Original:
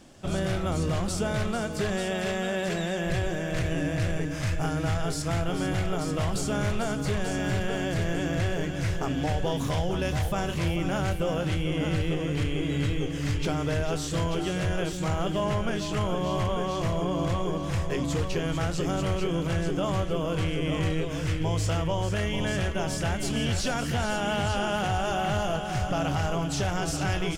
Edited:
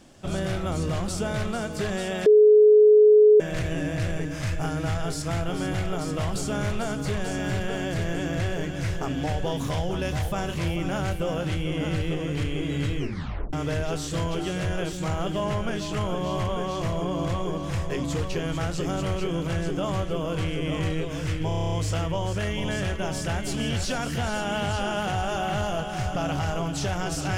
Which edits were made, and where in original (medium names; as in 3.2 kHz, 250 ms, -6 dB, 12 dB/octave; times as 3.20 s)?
2.26–3.40 s: bleep 424 Hz -11 dBFS
12.97 s: tape stop 0.56 s
21.48 s: stutter 0.03 s, 9 plays